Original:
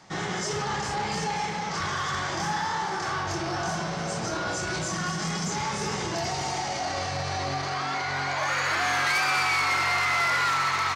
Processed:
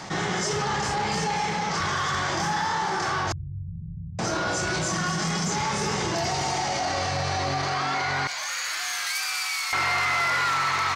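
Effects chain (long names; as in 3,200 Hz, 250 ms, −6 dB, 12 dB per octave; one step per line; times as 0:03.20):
0:03.32–0:04.19: inverse Chebyshev low-pass filter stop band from 620 Hz, stop band 80 dB
0:08.27–0:09.73: first difference
envelope flattener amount 50%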